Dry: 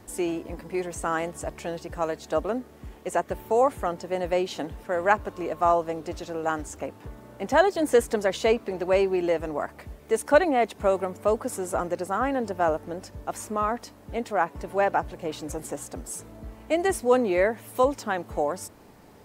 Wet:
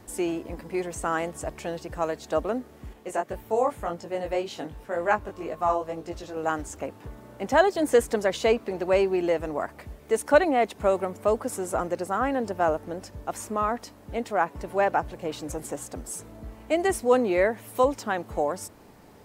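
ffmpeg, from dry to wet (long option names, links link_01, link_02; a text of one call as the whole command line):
ffmpeg -i in.wav -filter_complex "[0:a]asettb=1/sr,asplit=3[link_01][link_02][link_03];[link_01]atrim=end=2.934[link_04];[link_02]atrim=start=2.93:end=6.37,asetpts=PTS-STARTPTS,afade=type=in:duration=0.004:curve=qsin,afade=type=out:start_time=3.436:duration=0.004:curve=qsin,flanger=delay=17.5:depth=3.1:speed=1.9[link_05];[link_03]atrim=start=6.366[link_06];[link_04][link_05]acrossfade=duration=0.004:curve1=hsin:curve2=qsin[link_07];[link_07][link_06]acrossfade=duration=0.004:curve1=qsin:curve2=hsin" out.wav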